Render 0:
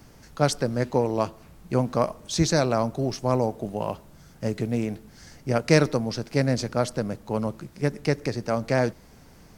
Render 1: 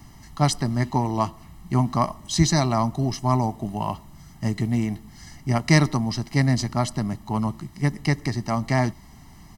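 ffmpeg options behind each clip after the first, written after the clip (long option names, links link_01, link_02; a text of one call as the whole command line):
ffmpeg -i in.wav -af "aecho=1:1:1:0.98" out.wav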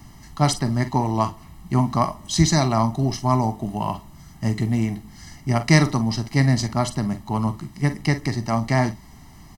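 ffmpeg -i in.wav -af "aecho=1:1:44|54:0.237|0.133,volume=1.5dB" out.wav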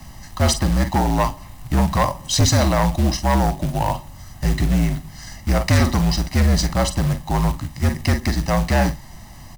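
ffmpeg -i in.wav -af "asoftclip=type=tanh:threshold=-16dB,acrusher=bits=4:mode=log:mix=0:aa=0.000001,afreqshift=-56,volume=6dB" out.wav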